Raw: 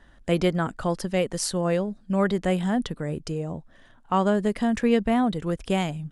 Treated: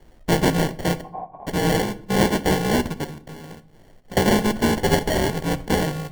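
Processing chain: bit-reversed sample order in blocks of 64 samples; 3.04–4.17 s: compression 5:1, threshold -40 dBFS, peak gain reduction 19.5 dB; 4.80–5.42 s: Chebyshev band-stop 180–2100 Hz, order 5; sample-and-hold 35×; 1.01–1.47 s: cascade formant filter a; reverberation RT60 0.60 s, pre-delay 13 ms, DRR 12.5 dB; trim +3.5 dB

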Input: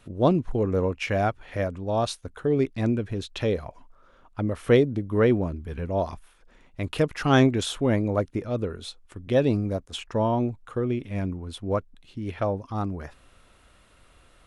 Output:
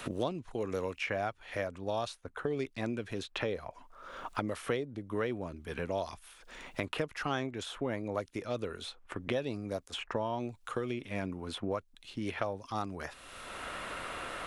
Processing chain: bass shelf 380 Hz -11.5 dB; three bands compressed up and down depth 100%; trim -5.5 dB

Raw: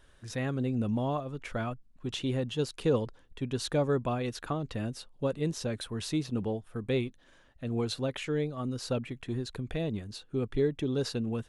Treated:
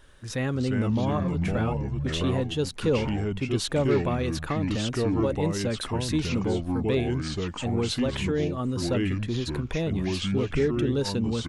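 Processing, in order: band-stop 690 Hz, Q 12; ever faster or slower copies 256 ms, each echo -4 st, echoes 2; in parallel at -0.5 dB: peak limiter -26.5 dBFS, peak gain reduction 12.5 dB; on the sum: echo from a far wall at 47 m, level -30 dB

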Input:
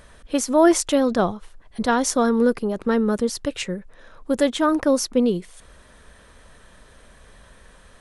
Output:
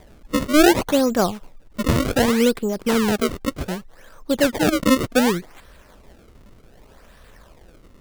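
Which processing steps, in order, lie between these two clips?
wow and flutter 16 cents; decimation with a swept rate 31×, swing 160% 0.66 Hz; trim +1 dB

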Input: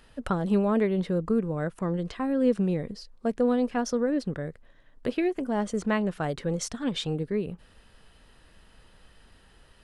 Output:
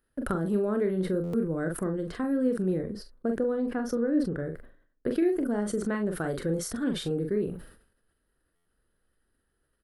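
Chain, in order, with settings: compression 2.5:1, threshold -29 dBFS, peak gain reduction 8 dB; FFT filter 200 Hz 0 dB, 350 Hz +6 dB, 930 Hz -6 dB, 1.5 kHz +4 dB, 2.5 kHz -9 dB, 4.6 kHz -4 dB, 6.8 kHz -6 dB, 11 kHz +11 dB; gate with hold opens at -40 dBFS; 2.78–5.11 s: treble shelf 3.6 kHz -9.5 dB; early reflections 30 ms -16.5 dB, 43 ms -6.5 dB; buffer glitch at 1.23/8.55 s, samples 512, times 8; decay stretcher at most 95 dB/s

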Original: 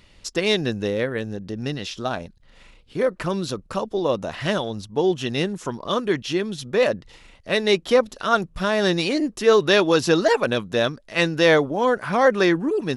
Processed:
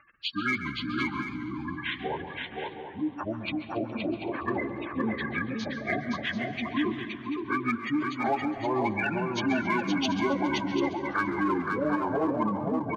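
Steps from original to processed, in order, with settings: frequency-domain pitch shifter -9 st; spectral gate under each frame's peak -15 dB strong; high-pass 1 kHz 6 dB/octave; in parallel at -4.5 dB: hard clipper -25.5 dBFS, distortion -11 dB; on the sum: compression, threshold -24 dBFS, peak gain reduction 7 dB; on a send: multi-tap echo 520/738 ms -4/-10 dB; on the sum: plate-style reverb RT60 1.3 s, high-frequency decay 0.55×, pre-delay 115 ms, DRR 12 dB; modulated delay 138 ms, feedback 71%, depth 147 cents, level -16 dB

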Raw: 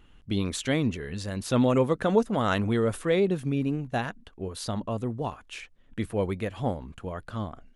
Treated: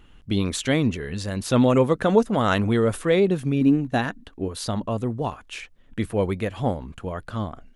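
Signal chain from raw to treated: 3.61–4.48 s: small resonant body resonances 280/1800/3900 Hz, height 8 dB; trim +4.5 dB

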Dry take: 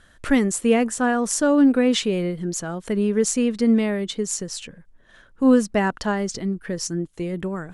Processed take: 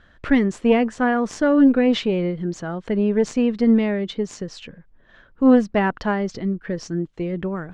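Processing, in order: Chebyshev shaper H 2 -13 dB, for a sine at -6 dBFS; distance through air 200 m; trim +2 dB

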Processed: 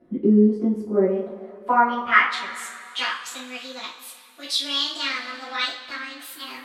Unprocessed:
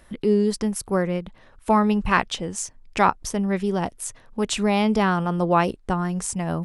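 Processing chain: pitch bend over the whole clip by +8 st starting unshifted; band-pass sweep 310 Hz -> 3.8 kHz, 0.79–2.78 s; two-slope reverb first 0.32 s, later 2.6 s, from -19 dB, DRR -9 dB

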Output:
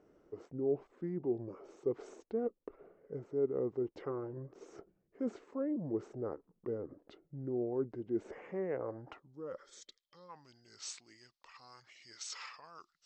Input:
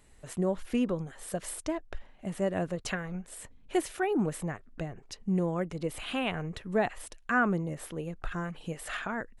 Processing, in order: time-frequency box 6.61–7.41 s, 820–4300 Hz -20 dB; reverse; compression 4:1, threshold -37 dBFS, peak gain reduction 12.5 dB; reverse; band-pass sweep 570 Hz -> 6.3 kHz, 6.23–7.56 s; tape speed -28%; trim +9 dB

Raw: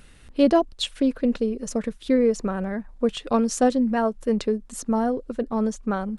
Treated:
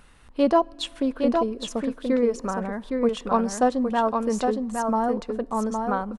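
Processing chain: peaking EQ 1 kHz +10.5 dB 1 oct; delay 813 ms -4.5 dB; on a send at -24 dB: reverberation RT60 1.9 s, pre-delay 4 ms; on the sum: trim -4.5 dB

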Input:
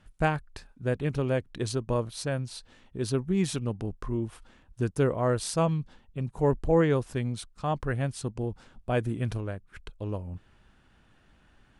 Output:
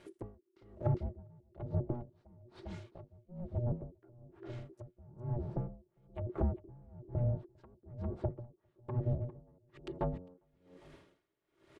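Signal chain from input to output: comb filter that takes the minimum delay 3.9 ms; ring modulator 360 Hz; saturation -25.5 dBFS, distortion -12 dB; low-pass that closes with the level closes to 310 Hz, closed at -33 dBFS; on a send: feedback delay 402 ms, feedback 21%, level -13 dB; on the sum: logarithmic tremolo 1.1 Hz, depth 29 dB; trim +6.5 dB

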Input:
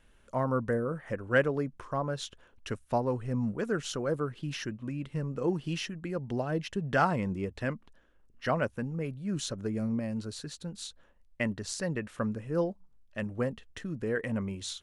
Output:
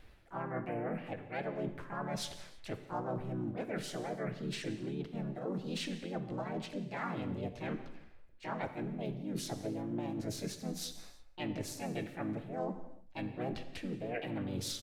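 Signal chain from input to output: treble shelf 4.7 kHz -9 dB; reverse; compression 10:1, threshold -41 dBFS, peak gain reduction 21.5 dB; reverse; harmony voices +4 st -1 dB, +7 st -1 dB; vibrato 8.7 Hz 12 cents; on a send: delay 176 ms -22.5 dB; on the sum: gated-style reverb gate 360 ms falling, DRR 8 dB; trim +1 dB

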